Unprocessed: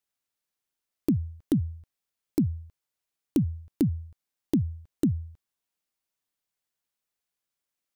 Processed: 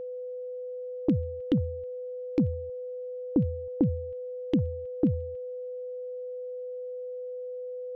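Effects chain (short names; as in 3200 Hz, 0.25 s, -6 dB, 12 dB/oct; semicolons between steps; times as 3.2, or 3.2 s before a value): LFO low-pass square 7.3 Hz 810–2900 Hz; whine 500 Hz -33 dBFS; gain -1 dB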